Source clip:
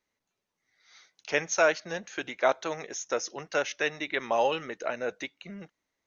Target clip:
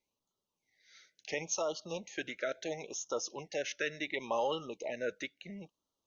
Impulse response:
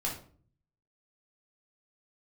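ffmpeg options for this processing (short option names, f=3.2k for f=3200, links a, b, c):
-af "bandreject=f=700:w=12,alimiter=limit=-19dB:level=0:latency=1:release=39,afftfilt=real='re*(1-between(b*sr/1024,910*pow(2000/910,0.5+0.5*sin(2*PI*0.72*pts/sr))/1.41,910*pow(2000/910,0.5+0.5*sin(2*PI*0.72*pts/sr))*1.41))':imag='im*(1-between(b*sr/1024,910*pow(2000/910,0.5+0.5*sin(2*PI*0.72*pts/sr))/1.41,910*pow(2000/910,0.5+0.5*sin(2*PI*0.72*pts/sr))*1.41))':win_size=1024:overlap=0.75,volume=-3.5dB"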